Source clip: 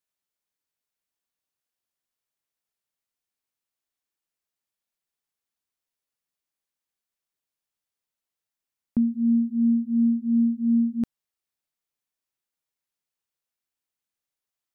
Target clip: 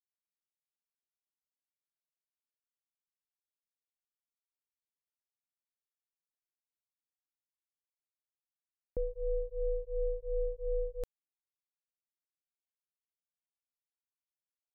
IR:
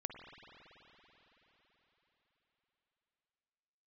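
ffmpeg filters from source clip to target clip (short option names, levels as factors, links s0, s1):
-af "crystalizer=i=3:c=0,aeval=exprs='val(0)*sin(2*PI*260*n/s)':c=same,anlmdn=1.58,volume=0.355"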